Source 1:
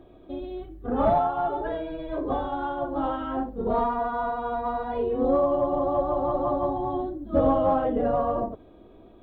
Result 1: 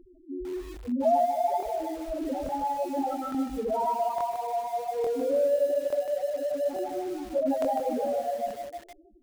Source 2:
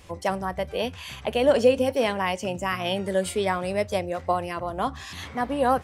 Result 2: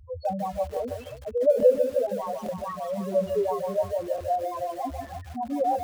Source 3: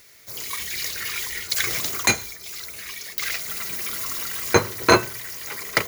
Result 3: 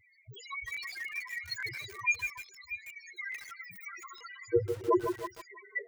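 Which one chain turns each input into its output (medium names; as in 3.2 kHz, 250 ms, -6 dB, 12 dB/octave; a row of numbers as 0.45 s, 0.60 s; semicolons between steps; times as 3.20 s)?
median filter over 3 samples; loudest bins only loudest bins 2; peaking EQ 71 Hz +2 dB 1.8 oct; gain riding within 4 dB 2 s; repeats whose band climbs or falls 318 ms, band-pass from 780 Hz, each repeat 1.4 oct, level -8 dB; crackling interface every 0.86 s, samples 1024, repeat, from 0.72 s; bit-crushed delay 151 ms, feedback 35%, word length 7-bit, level -6.5 dB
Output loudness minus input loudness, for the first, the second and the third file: -2.5 LU, -1.5 LU, -11.0 LU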